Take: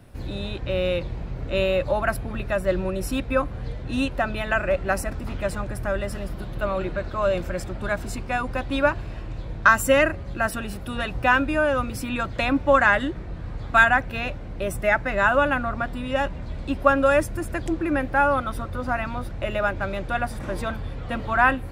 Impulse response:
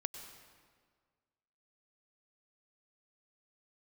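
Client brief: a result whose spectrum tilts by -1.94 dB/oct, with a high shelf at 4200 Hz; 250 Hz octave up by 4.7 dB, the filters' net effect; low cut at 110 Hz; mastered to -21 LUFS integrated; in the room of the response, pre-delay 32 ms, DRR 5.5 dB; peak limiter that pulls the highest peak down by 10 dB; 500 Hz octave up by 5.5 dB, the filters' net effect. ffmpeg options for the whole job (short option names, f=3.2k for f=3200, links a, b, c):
-filter_complex "[0:a]highpass=110,equalizer=f=250:t=o:g=4,equalizer=f=500:t=o:g=6,highshelf=f=4.2k:g=-8.5,alimiter=limit=-9.5dB:level=0:latency=1,asplit=2[a][b];[1:a]atrim=start_sample=2205,adelay=32[c];[b][c]afir=irnorm=-1:irlink=0,volume=-5dB[d];[a][d]amix=inputs=2:normalize=0,volume=1dB"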